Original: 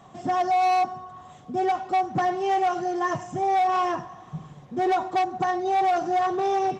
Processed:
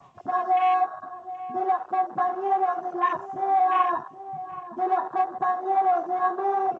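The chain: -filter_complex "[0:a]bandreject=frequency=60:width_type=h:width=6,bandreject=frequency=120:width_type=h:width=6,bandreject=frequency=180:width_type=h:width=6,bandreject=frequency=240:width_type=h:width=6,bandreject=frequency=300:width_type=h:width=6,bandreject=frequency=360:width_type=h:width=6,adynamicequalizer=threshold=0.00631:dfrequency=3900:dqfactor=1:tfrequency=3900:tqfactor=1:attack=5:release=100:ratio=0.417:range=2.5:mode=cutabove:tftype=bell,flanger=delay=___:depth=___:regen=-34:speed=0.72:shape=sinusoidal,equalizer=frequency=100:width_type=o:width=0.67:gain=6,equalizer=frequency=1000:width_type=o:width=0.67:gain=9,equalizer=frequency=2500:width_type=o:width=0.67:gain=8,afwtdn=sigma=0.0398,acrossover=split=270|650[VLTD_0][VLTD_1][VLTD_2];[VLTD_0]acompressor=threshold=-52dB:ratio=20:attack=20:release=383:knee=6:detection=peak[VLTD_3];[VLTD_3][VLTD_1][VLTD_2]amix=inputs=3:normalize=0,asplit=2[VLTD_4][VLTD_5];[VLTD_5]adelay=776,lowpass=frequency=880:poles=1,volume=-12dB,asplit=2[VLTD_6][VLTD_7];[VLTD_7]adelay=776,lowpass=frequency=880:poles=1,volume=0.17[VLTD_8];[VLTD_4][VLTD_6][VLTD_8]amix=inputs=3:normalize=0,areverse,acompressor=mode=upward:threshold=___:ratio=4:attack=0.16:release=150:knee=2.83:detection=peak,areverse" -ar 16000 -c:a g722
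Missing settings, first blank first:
7, 7.6, -39dB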